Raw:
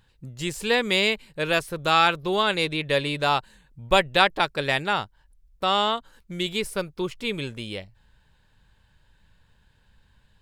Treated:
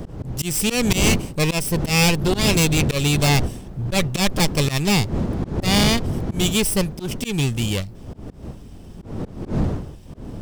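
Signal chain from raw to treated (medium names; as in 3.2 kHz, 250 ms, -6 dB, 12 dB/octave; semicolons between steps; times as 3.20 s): comb filter that takes the minimum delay 0.37 ms; wind noise 360 Hz -35 dBFS; tone controls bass +8 dB, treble +12 dB; slow attack 158 ms; saturation -19.5 dBFS, distortion -10 dB; trim +7.5 dB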